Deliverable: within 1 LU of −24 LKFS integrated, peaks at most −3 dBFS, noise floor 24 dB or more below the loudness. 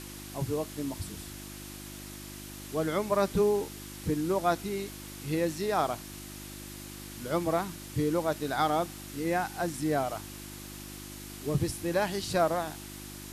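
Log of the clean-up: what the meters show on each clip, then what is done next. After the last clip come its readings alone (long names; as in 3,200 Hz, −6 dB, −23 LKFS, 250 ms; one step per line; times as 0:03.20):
mains hum 50 Hz; hum harmonics up to 350 Hz; level of the hum −43 dBFS; background noise floor −44 dBFS; target noise floor −55 dBFS; integrated loudness −31.0 LKFS; sample peak −13.5 dBFS; target loudness −24.0 LKFS
→ hum removal 50 Hz, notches 7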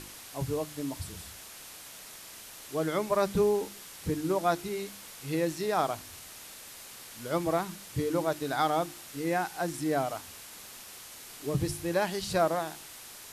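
mains hum none found; background noise floor −47 dBFS; target noise floor −56 dBFS
→ broadband denoise 9 dB, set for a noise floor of −47 dBFS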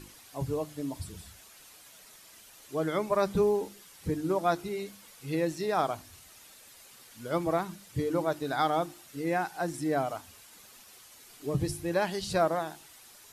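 background noise floor −54 dBFS; target noise floor −55 dBFS
→ broadband denoise 6 dB, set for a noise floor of −54 dBFS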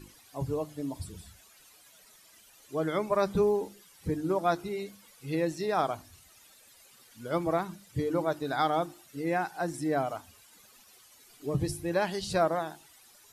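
background noise floor −58 dBFS; integrated loudness −31.0 LKFS; sample peak −14.5 dBFS; target loudness −24.0 LKFS
→ level +7 dB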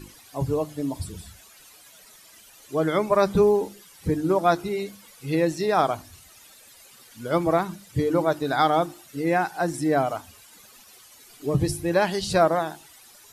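integrated loudness −24.0 LKFS; sample peak −7.5 dBFS; background noise floor −51 dBFS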